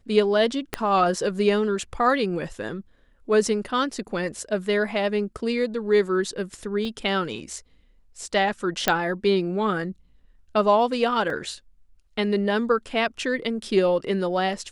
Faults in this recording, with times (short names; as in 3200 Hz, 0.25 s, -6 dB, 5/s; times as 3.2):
0.74 pop -9 dBFS
6.85 gap 2.4 ms
8.88 pop -4 dBFS
11.3 gap 2.6 ms